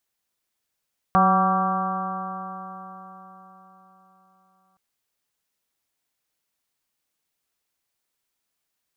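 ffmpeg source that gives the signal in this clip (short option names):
-f lavfi -i "aevalsrc='0.1*pow(10,-3*t/4.29)*sin(2*PI*186.19*t)+0.0237*pow(10,-3*t/4.29)*sin(2*PI*373.49*t)+0.0398*pow(10,-3*t/4.29)*sin(2*PI*563*t)+0.126*pow(10,-3*t/4.29)*sin(2*PI*755.81*t)+0.0501*pow(10,-3*t/4.29)*sin(2*PI*952.97*t)+0.141*pow(10,-3*t/4.29)*sin(2*PI*1155.48*t)+0.0447*pow(10,-3*t/4.29)*sin(2*PI*1364.31*t)+0.0178*pow(10,-3*t/4.29)*sin(2*PI*1580.37*t)':d=3.62:s=44100"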